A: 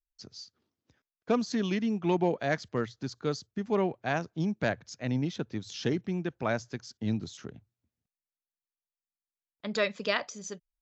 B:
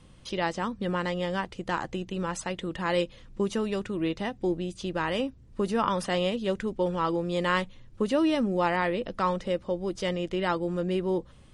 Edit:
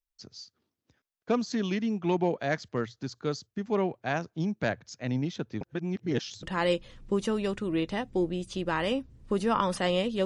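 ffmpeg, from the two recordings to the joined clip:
ffmpeg -i cue0.wav -i cue1.wav -filter_complex "[0:a]apad=whole_dur=10.25,atrim=end=10.25,asplit=2[link_01][link_02];[link_01]atrim=end=5.612[link_03];[link_02]atrim=start=5.608:end=6.432,asetpts=PTS-STARTPTS,areverse[link_04];[1:a]atrim=start=2.708:end=6.53[link_05];[link_03][link_04]acrossfade=duration=0.004:curve1=hsin:curve2=hsin[link_06];[link_06][link_05]acrossfade=duration=0.004:curve1=hsin:curve2=hsin" out.wav

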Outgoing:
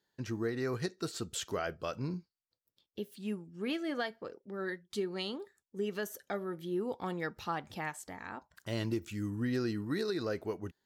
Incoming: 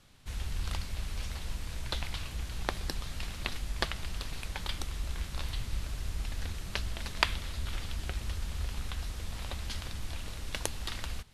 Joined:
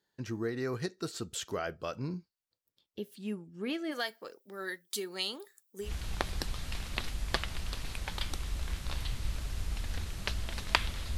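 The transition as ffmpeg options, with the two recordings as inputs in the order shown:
ffmpeg -i cue0.wav -i cue1.wav -filter_complex "[0:a]asplit=3[link_01][link_02][link_03];[link_01]afade=type=out:start_time=3.91:duration=0.02[link_04];[link_02]aemphasis=mode=production:type=riaa,afade=type=in:start_time=3.91:duration=0.02,afade=type=out:start_time=5.92:duration=0.02[link_05];[link_03]afade=type=in:start_time=5.92:duration=0.02[link_06];[link_04][link_05][link_06]amix=inputs=3:normalize=0,apad=whole_dur=11.17,atrim=end=11.17,atrim=end=5.92,asetpts=PTS-STARTPTS[link_07];[1:a]atrim=start=2.28:end=7.65,asetpts=PTS-STARTPTS[link_08];[link_07][link_08]acrossfade=duration=0.12:curve1=tri:curve2=tri" out.wav

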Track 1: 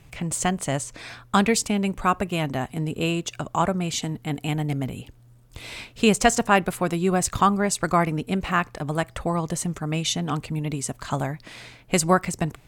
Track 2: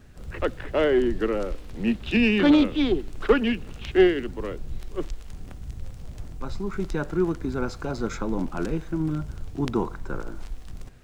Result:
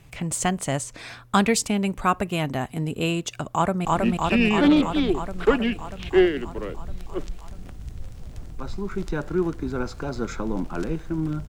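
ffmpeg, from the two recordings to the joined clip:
ffmpeg -i cue0.wav -i cue1.wav -filter_complex "[0:a]apad=whole_dur=11.48,atrim=end=11.48,atrim=end=3.852[link_01];[1:a]atrim=start=1.668:end=9.3[link_02];[link_01][link_02]acrossfade=duration=0.004:curve1=hsin:curve2=hsin,asplit=2[link_03][link_04];[link_04]afade=type=in:start_time=3.52:duration=0.01,afade=type=out:start_time=3.85:duration=0.01,aecho=0:1:320|640|960|1280|1600|1920|2240|2560|2880|3200|3520|3840:0.944061|0.708046|0.531034|0.398276|0.298707|0.22403|0.168023|0.126017|0.0945127|0.0708845|0.0531634|0.0398725[link_05];[link_03][link_05]amix=inputs=2:normalize=0" out.wav

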